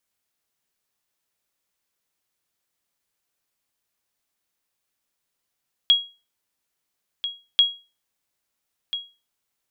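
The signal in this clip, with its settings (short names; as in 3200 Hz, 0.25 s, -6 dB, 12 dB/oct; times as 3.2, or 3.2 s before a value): sonar ping 3300 Hz, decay 0.30 s, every 1.69 s, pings 2, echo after 1.34 s, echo -12 dB -8.5 dBFS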